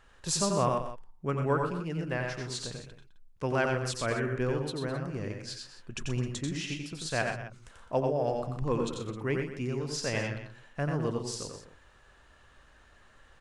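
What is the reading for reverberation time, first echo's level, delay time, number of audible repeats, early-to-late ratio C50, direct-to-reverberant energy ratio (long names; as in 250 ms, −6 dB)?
no reverb audible, −4.5 dB, 89 ms, 4, no reverb audible, no reverb audible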